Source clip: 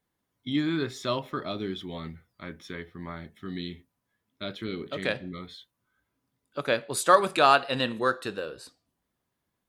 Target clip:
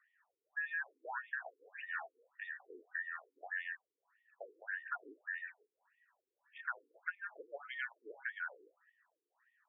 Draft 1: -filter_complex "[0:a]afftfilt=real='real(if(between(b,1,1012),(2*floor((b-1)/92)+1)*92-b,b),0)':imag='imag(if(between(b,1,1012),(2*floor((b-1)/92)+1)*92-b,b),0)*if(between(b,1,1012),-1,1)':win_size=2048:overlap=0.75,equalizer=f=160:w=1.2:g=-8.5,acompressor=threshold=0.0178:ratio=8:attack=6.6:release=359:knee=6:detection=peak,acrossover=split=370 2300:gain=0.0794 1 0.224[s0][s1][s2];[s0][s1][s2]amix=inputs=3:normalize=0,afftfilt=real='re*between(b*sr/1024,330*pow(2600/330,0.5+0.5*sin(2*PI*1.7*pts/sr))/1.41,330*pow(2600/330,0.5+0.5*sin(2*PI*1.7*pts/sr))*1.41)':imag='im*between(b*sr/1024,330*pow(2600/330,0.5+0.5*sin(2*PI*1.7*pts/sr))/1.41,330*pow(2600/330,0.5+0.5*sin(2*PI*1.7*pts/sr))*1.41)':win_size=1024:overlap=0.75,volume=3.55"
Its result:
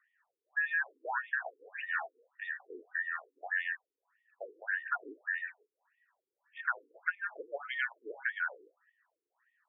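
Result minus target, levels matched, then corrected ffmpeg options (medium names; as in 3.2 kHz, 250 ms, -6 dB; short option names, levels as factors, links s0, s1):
compression: peak gain reduction -7.5 dB
-filter_complex "[0:a]afftfilt=real='real(if(between(b,1,1012),(2*floor((b-1)/92)+1)*92-b,b),0)':imag='imag(if(between(b,1,1012),(2*floor((b-1)/92)+1)*92-b,b),0)*if(between(b,1,1012),-1,1)':win_size=2048:overlap=0.75,equalizer=f=160:w=1.2:g=-8.5,acompressor=threshold=0.00668:ratio=8:attack=6.6:release=359:knee=6:detection=peak,acrossover=split=370 2300:gain=0.0794 1 0.224[s0][s1][s2];[s0][s1][s2]amix=inputs=3:normalize=0,afftfilt=real='re*between(b*sr/1024,330*pow(2600/330,0.5+0.5*sin(2*PI*1.7*pts/sr))/1.41,330*pow(2600/330,0.5+0.5*sin(2*PI*1.7*pts/sr))*1.41)':imag='im*between(b*sr/1024,330*pow(2600/330,0.5+0.5*sin(2*PI*1.7*pts/sr))/1.41,330*pow(2600/330,0.5+0.5*sin(2*PI*1.7*pts/sr))*1.41)':win_size=1024:overlap=0.75,volume=3.55"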